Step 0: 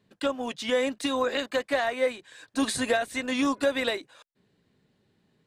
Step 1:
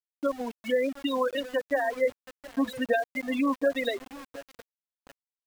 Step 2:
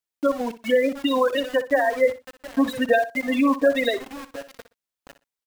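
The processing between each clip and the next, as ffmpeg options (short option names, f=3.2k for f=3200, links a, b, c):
-filter_complex "[0:a]afftfilt=real='re*gte(hypot(re,im),0.112)':imag='im*gte(hypot(re,im),0.112)':win_size=1024:overlap=0.75,asplit=2[a][b];[b]adelay=716,lowpass=f=1.3k:p=1,volume=-16.5dB,asplit=2[c][d];[d]adelay=716,lowpass=f=1.3k:p=1,volume=0.49,asplit=2[e][f];[f]adelay=716,lowpass=f=1.3k:p=1,volume=0.49,asplit=2[g][h];[h]adelay=716,lowpass=f=1.3k:p=1,volume=0.49[i];[a][c][e][g][i]amix=inputs=5:normalize=0,aeval=exprs='val(0)*gte(abs(val(0)),0.01)':c=same"
-af "aecho=1:1:61|122:0.211|0.0402,volume=6.5dB"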